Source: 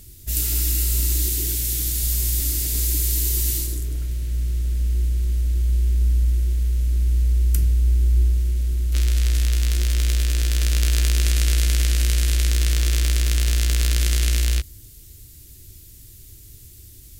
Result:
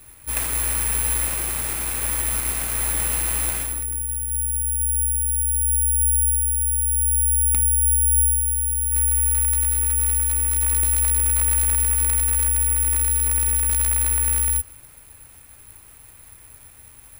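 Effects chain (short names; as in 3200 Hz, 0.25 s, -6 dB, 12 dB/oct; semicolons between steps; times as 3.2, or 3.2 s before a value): median filter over 3 samples; brick-wall FIR band-stop 530–8300 Hz; tilt shelf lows -3.5 dB; careless resampling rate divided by 4×, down none, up zero stuff; gain -4.5 dB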